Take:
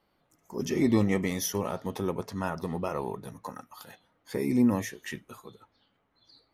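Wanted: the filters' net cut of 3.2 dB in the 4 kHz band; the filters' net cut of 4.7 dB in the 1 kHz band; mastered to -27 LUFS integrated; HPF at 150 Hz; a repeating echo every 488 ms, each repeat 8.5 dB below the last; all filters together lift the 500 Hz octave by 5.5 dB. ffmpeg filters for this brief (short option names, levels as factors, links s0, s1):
-af "highpass=150,equalizer=f=500:t=o:g=9,equalizer=f=1000:t=o:g=-9,equalizer=f=4000:t=o:g=-4,aecho=1:1:488|976|1464|1952:0.376|0.143|0.0543|0.0206,volume=1.12"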